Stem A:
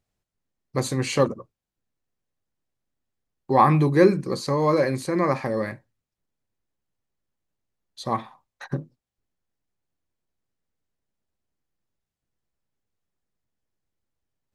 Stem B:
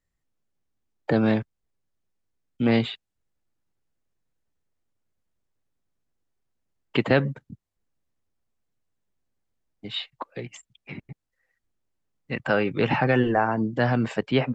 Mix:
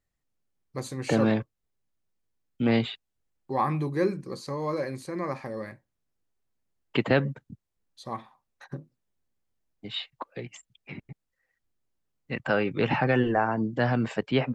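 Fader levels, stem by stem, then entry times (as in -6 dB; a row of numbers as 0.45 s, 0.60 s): -9.5 dB, -2.5 dB; 0.00 s, 0.00 s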